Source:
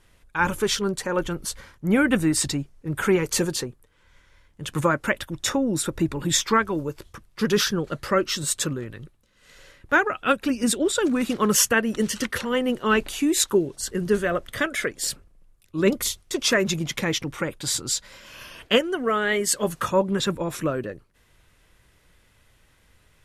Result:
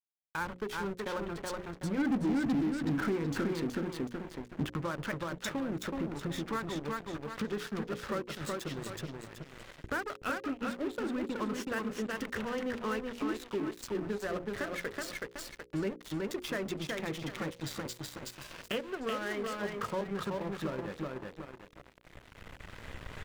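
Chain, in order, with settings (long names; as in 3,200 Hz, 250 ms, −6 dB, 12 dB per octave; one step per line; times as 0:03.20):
adaptive Wiener filter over 9 samples
camcorder AGC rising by 9.7 dB per second
treble cut that deepens with the level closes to 2,600 Hz, closed at −20 dBFS
repeating echo 374 ms, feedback 34%, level −4 dB
downward compressor 2 to 1, threshold −36 dBFS, peak gain reduction 12.5 dB
0:01.98–0:04.72: parametric band 260 Hz +12.5 dB 0.6 octaves
dead-zone distortion −39.5 dBFS
high-shelf EQ 12,000 Hz +7 dB
mains-hum notches 60/120/180/240/300/360/420/480/540 Hz
soft clipping −25 dBFS, distortion −12 dB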